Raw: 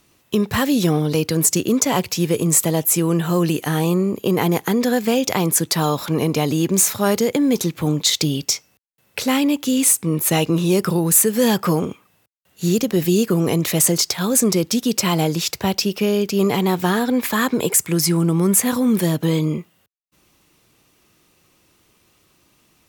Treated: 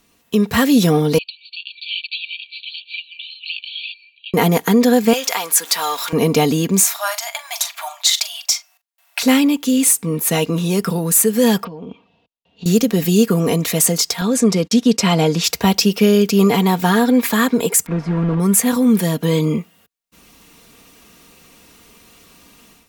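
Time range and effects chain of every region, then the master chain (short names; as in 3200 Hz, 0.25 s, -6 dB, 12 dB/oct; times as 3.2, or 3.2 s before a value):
1.18–4.34 brick-wall FIR band-pass 2300–4600 Hz + high shelf 3400 Hz -8.5 dB
5.13–6.13 zero-crossing step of -29 dBFS + HPF 850 Hz
6.83–9.23 brick-wall FIR high-pass 590 Hz + doubler 42 ms -13.5 dB
11.64–12.66 LPF 3700 Hz 24 dB/oct + band shelf 1600 Hz -12 dB 1.1 oct + compressor 20:1, threshold -29 dBFS
14.21–15.44 gate -31 dBFS, range -40 dB + air absorption 55 m
17.86–18.4 block floating point 3-bit + LPF 1200 Hz
whole clip: comb 4.3 ms, depth 55%; AGC; gain -1 dB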